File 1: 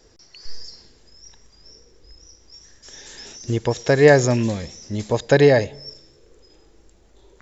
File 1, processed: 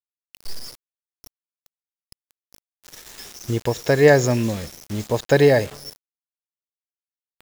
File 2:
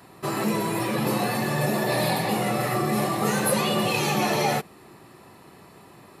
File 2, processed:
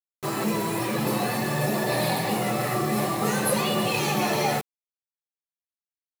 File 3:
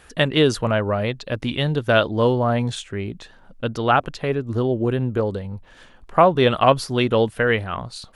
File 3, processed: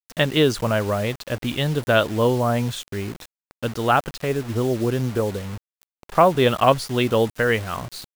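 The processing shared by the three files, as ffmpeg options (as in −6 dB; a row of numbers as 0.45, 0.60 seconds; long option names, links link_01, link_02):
-af "acrusher=bits=5:mix=0:aa=0.000001,volume=-1dB"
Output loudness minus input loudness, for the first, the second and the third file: −1.0, −1.0, −1.0 LU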